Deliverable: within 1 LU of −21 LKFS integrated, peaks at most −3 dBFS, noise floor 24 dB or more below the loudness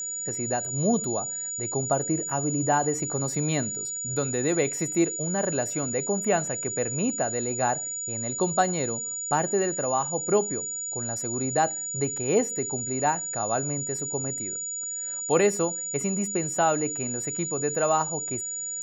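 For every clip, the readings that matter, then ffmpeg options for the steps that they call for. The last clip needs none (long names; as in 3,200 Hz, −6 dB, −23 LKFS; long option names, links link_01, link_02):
interfering tone 6,900 Hz; level of the tone −30 dBFS; integrated loudness −26.0 LKFS; sample peak −8.5 dBFS; target loudness −21.0 LKFS
→ -af "bandreject=frequency=6900:width=30"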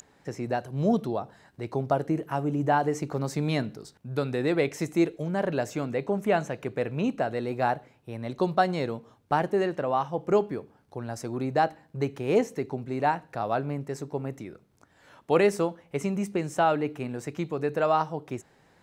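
interfering tone none found; integrated loudness −28.5 LKFS; sample peak −9.0 dBFS; target loudness −21.0 LKFS
→ -af "volume=7.5dB,alimiter=limit=-3dB:level=0:latency=1"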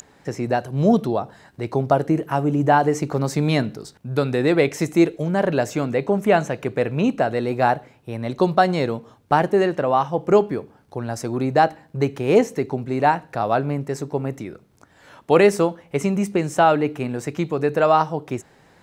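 integrated loudness −21.0 LKFS; sample peak −3.0 dBFS; background noise floor −55 dBFS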